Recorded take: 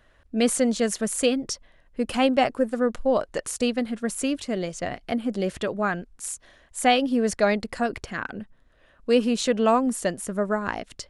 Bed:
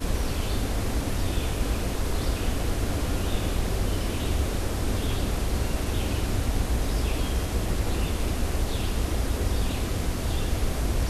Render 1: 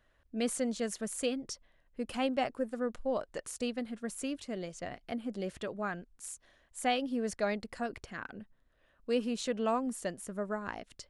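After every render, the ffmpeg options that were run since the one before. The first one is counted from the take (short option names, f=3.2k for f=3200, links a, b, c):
-af "volume=-11dB"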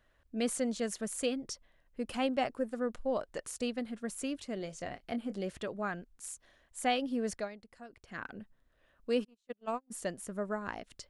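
-filter_complex "[0:a]asettb=1/sr,asplit=3[a][b][c];[a]atrim=end=4.574[d];[b]atrim=start=4.57:end=5.39,asetpts=PTS-STARTPTS,afade=t=in:d=0.004:c=qsin,afade=t=out:st=0.816:d=0.004:c=qsin,asplit=2[e][f];[f]adelay=25,volume=-11dB[g];[e][g]amix=inputs=2:normalize=0,atrim=end_sample=36162[h];[c]atrim=start=5.386[i];[d][h]acrossfade=d=0.004:c1=hsin:c2=qsin[j];[j][i]acrossfade=d=0.004:c1=qsin:c2=hsin,asplit=3[k][l][m];[k]afade=t=out:st=9.23:d=0.02[n];[l]agate=range=-43dB:threshold=-29dB:ratio=16:release=100:detection=peak,afade=t=in:st=9.23:d=0.02,afade=t=out:st=9.9:d=0.02[o];[m]afade=t=in:st=9.9:d=0.02[p];[n][o][p]amix=inputs=3:normalize=0,asplit=3[q][r][s];[q]atrim=end=7.49,asetpts=PTS-STARTPTS,afade=t=out:st=7.36:d=0.13:silence=0.199526[t];[r]atrim=start=7.49:end=8.03,asetpts=PTS-STARTPTS,volume=-14dB[u];[s]atrim=start=8.03,asetpts=PTS-STARTPTS,afade=t=in:d=0.13:silence=0.199526[v];[t][u][v]concat=n=3:v=0:a=1"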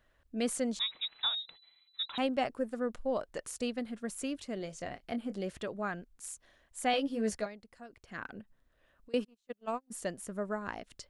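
-filter_complex "[0:a]asettb=1/sr,asplit=3[a][b][c];[a]atrim=end=0.794[d];[b]atrim=start=0.79:end=2.18,asetpts=PTS-STARTPTS,afade=t=in:d=0.004:c=qsin,afade=t=out:st=1.386:d=0.004:c=qsin,lowpass=f=3.4k:t=q:w=0.5098,lowpass=f=3.4k:t=q:w=0.6013,lowpass=f=3.4k:t=q:w=0.9,lowpass=f=3.4k:t=q:w=2.563,afreqshift=-4000[e];[c]atrim=start=2.176[f];[d][e]acrossfade=d=0.004:c1=hsin:c2=qsin[g];[g][f]acrossfade=d=0.004:c1=qsin:c2=hsin,asettb=1/sr,asplit=3[h][i][j];[h]atrim=end=6.924[k];[i]atrim=start=6.92:end=7.46,asetpts=PTS-STARTPTS,afade=t=in:d=0.004:c=qsin,afade=t=out:st=0.536:d=0.004:c=qsin,asplit=2[l][m];[m]adelay=14,volume=-3.5dB[n];[l][n]amix=inputs=2:normalize=0,atrim=end_sample=23814[o];[j]atrim=start=7.456[p];[k][o]acrossfade=d=0.004:c1=hsin:c2=qsin[q];[q][p]acrossfade=d=0.004:c1=qsin:c2=hsin,asettb=1/sr,asplit=3[r][s][t];[r]atrim=end=8.414[u];[s]atrim=start=8.41:end=9.14,asetpts=PTS-STARTPTS,afade=t=in:d=0.004:c=qsin,afade=t=out:st=0.726:d=0.004:c=qsin,acompressor=threshold=-53dB:ratio=6:attack=3.2:release=140:knee=1:detection=peak[v];[t]atrim=start=9.136[w];[u][v]acrossfade=d=0.004:c1=hsin:c2=qsin[x];[x][w]acrossfade=d=0.004:c1=qsin:c2=hsin"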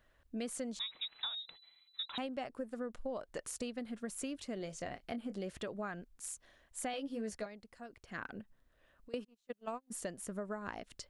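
-af "acompressor=threshold=-37dB:ratio=6"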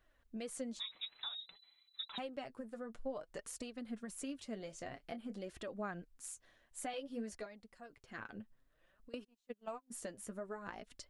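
-af "flanger=delay=2.5:depth=7.4:regen=33:speed=0.54:shape=triangular"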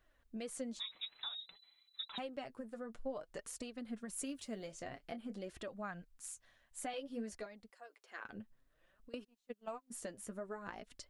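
-filter_complex "[0:a]asettb=1/sr,asplit=3[a][b][c];[a]atrim=end=4.134[d];[b]atrim=start=4.13:end=4.67,asetpts=PTS-STARTPTS,afade=t=in:d=0.004:c=qsin,afade=t=out:st=0.536:d=0.004:c=qsin,highshelf=f=8.5k:g=10.5[e];[c]atrim=start=4.666[f];[d][e]acrossfade=d=0.004:c1=hsin:c2=qsin[g];[g][f]acrossfade=d=0.004:c1=qsin:c2=hsin,asettb=1/sr,asplit=3[h][i][j];[h]atrim=end=5.684[k];[i]atrim=start=5.68:end=6.77,asetpts=PTS-STARTPTS,afade=t=in:d=0.004:c=qsin,afade=t=out:st=1.086:d=0.004:c=qsin,equalizer=f=360:t=o:w=1:g=-10[l];[j]atrim=start=6.766[m];[k][l]acrossfade=d=0.004:c1=hsin:c2=qsin[n];[n][m]acrossfade=d=0.004:c1=qsin:c2=hsin,asettb=1/sr,asplit=3[o][p][q];[o]atrim=end=7.704[r];[p]atrim=start=7.7:end=8.25,asetpts=PTS-STARTPTS,afade=t=in:d=0.004:c=qsin,afade=t=out:st=0.546:d=0.004:c=qsin,highpass=f=420:w=0.5412,highpass=f=420:w=1.3066[s];[q]atrim=start=8.246[t];[r][s]acrossfade=d=0.004:c1=hsin:c2=qsin[u];[u][t]acrossfade=d=0.004:c1=qsin:c2=hsin"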